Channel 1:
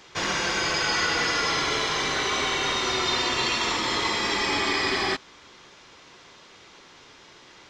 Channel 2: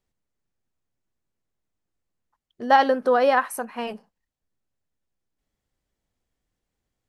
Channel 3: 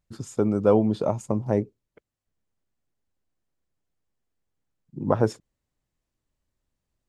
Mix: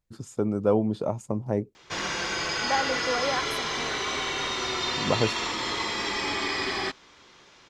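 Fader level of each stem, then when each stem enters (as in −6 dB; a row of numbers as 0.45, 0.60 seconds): −4.0, −10.5, −3.5 decibels; 1.75, 0.00, 0.00 seconds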